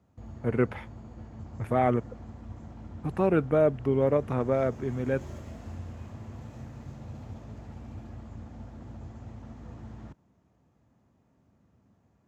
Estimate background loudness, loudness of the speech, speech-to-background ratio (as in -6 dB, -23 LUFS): -44.0 LUFS, -27.5 LUFS, 16.5 dB